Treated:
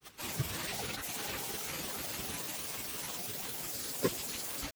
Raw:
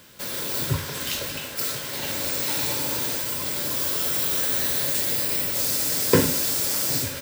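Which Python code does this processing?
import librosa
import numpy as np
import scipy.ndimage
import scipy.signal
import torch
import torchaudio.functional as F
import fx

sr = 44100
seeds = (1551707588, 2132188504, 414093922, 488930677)

y = fx.level_steps(x, sr, step_db=11)
y = fx.stretch_vocoder_free(y, sr, factor=0.66)
y = fx.granulator(y, sr, seeds[0], grain_ms=100.0, per_s=20.0, spray_ms=100.0, spread_st=12)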